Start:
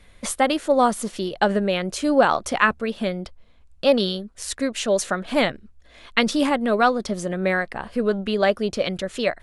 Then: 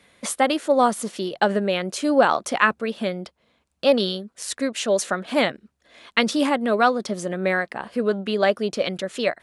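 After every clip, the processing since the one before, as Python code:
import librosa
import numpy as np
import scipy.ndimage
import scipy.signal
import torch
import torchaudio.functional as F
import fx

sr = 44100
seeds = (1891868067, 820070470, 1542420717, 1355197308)

y = scipy.signal.sosfilt(scipy.signal.butter(2, 170.0, 'highpass', fs=sr, output='sos'), x)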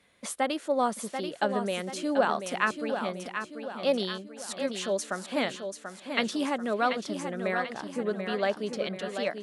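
y = fx.echo_feedback(x, sr, ms=737, feedback_pct=47, wet_db=-7.5)
y = y * 10.0 ** (-8.5 / 20.0)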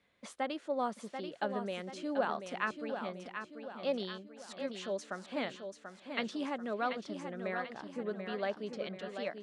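y = fx.air_absorb(x, sr, metres=85.0)
y = y * 10.0 ** (-7.5 / 20.0)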